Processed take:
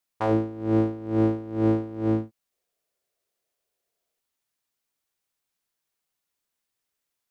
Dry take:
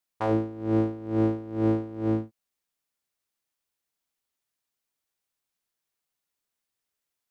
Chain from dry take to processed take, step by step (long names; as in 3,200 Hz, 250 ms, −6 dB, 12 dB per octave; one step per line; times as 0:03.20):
gain on a spectral selection 0:02.52–0:04.20, 360–740 Hz +10 dB
level +2 dB